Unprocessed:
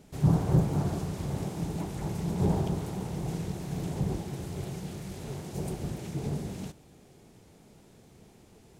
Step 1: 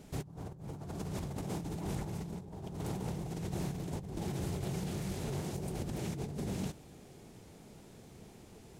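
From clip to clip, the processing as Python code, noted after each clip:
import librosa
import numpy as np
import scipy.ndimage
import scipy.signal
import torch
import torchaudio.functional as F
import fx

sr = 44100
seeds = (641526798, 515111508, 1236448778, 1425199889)

y = fx.over_compress(x, sr, threshold_db=-37.0, ratio=-1.0)
y = y * librosa.db_to_amplitude(-3.0)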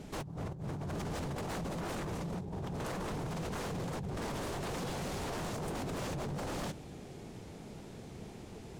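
y = fx.high_shelf(x, sr, hz=8500.0, db=-11.0)
y = 10.0 ** (-39.5 / 20.0) * (np.abs((y / 10.0 ** (-39.5 / 20.0) + 3.0) % 4.0 - 2.0) - 1.0)
y = y * librosa.db_to_amplitude(6.5)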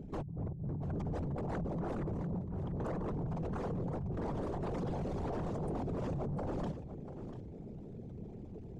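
y = fx.envelope_sharpen(x, sr, power=2.0)
y = y + 10.0 ** (-12.5 / 20.0) * np.pad(y, (int(692 * sr / 1000.0), 0))[:len(y)]
y = y * librosa.db_to_amplitude(1.0)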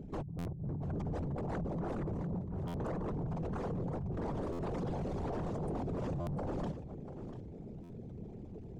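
y = fx.buffer_glitch(x, sr, at_s=(0.38, 2.67, 4.52, 6.2, 7.83), block=512, repeats=5)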